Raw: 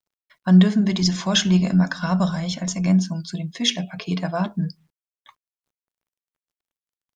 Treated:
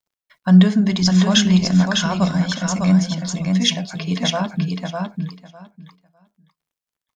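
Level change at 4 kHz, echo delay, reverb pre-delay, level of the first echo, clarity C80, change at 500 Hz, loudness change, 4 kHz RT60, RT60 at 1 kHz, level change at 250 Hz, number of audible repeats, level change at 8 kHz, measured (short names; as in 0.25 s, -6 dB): +4.0 dB, 0.603 s, none, -4.0 dB, none, +3.0 dB, +3.0 dB, none, none, +3.5 dB, 2, n/a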